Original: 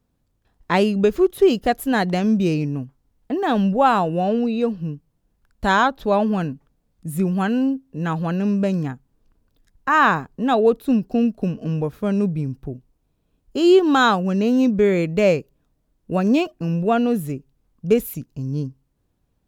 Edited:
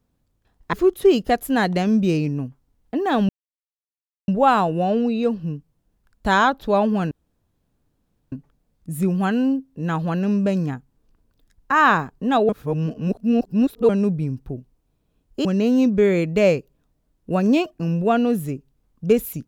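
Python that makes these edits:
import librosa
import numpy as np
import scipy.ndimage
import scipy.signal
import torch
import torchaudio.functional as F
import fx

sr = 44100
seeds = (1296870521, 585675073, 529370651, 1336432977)

y = fx.edit(x, sr, fx.cut(start_s=0.73, length_s=0.37),
    fx.insert_silence(at_s=3.66, length_s=0.99),
    fx.insert_room_tone(at_s=6.49, length_s=1.21),
    fx.reverse_span(start_s=10.66, length_s=1.4),
    fx.cut(start_s=13.62, length_s=0.64), tone=tone)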